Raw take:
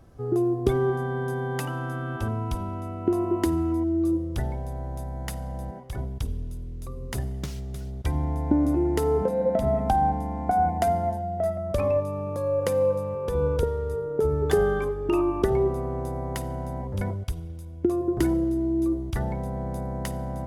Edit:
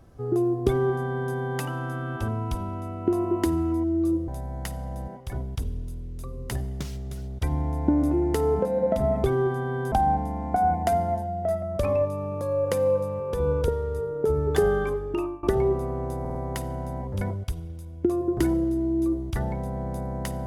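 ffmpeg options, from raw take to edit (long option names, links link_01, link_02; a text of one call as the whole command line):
ffmpeg -i in.wav -filter_complex "[0:a]asplit=8[link_01][link_02][link_03][link_04][link_05][link_06][link_07][link_08];[link_01]atrim=end=4.282[link_09];[link_02]atrim=start=4.908:end=9.872[link_10];[link_03]atrim=start=0.668:end=1.352[link_11];[link_04]atrim=start=9.868:end=15.38,asetpts=PTS-STARTPTS,afade=type=out:start_time=5.082:duration=0.43:silence=0.0841395[link_12];[link_05]atrim=start=15.38:end=16.202,asetpts=PTS-STARTPTS,afade=type=in:duration=0.004:curve=hsin:silence=0.0841395[link_13];[link_06]atrim=start=16.148:end=16.202[link_14];[link_07]atrim=start=16.148:end=16.202[link_15];[link_08]atrim=start=16.148[link_16];[link_09][link_10]acrossfade=duration=0.004:curve1=hsin:curve2=hsin[link_17];[link_17][link_11]acrossfade=duration=0.004:curve1=hsin:curve2=hsin[link_18];[link_12][link_13]concat=n=2:v=0:a=1[link_19];[link_18][link_19]acrossfade=duration=0.004:curve1=hsin:curve2=hsin[link_20];[link_20][link_14]acrossfade=duration=0.004:curve1=hsin:curve2=hsin[link_21];[link_21][link_15]acrossfade=duration=0.004:curve1=hsin:curve2=hsin[link_22];[link_22][link_16]acrossfade=duration=0.004:curve1=hsin:curve2=hsin" out.wav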